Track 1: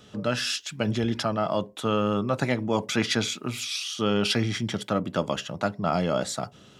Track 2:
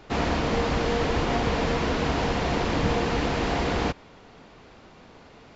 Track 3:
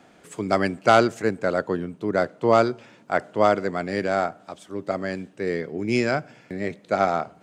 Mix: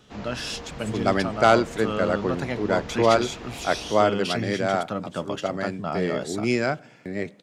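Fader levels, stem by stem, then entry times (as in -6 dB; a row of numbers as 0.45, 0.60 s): -4.0, -14.5, -1.0 dB; 0.00, 0.00, 0.55 s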